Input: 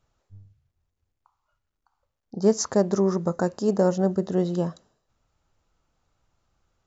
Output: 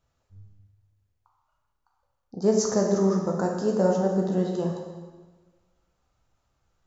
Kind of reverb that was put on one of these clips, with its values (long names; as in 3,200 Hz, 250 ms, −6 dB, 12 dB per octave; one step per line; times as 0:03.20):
dense smooth reverb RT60 1.4 s, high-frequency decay 0.85×, DRR 0 dB
level −3.5 dB